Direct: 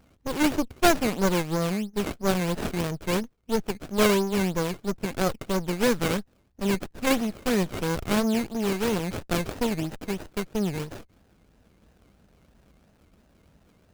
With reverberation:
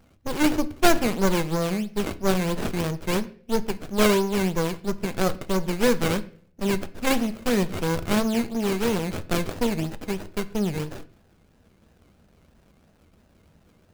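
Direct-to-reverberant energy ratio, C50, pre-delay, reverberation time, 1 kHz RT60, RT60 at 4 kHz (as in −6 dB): 12.0 dB, 18.0 dB, 5 ms, 0.50 s, 0.45 s, 0.45 s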